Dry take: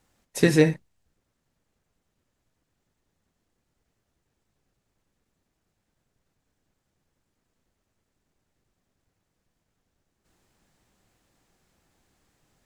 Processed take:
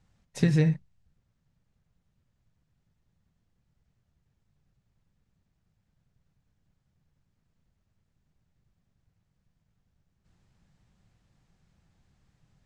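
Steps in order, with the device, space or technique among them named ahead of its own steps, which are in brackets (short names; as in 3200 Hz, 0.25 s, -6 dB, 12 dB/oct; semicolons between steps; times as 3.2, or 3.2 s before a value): jukebox (LPF 6500 Hz 12 dB/oct; resonant low shelf 220 Hz +9.5 dB, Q 1.5; compressor 3:1, threshold -16 dBFS, peak gain reduction 6.5 dB); gain -4.5 dB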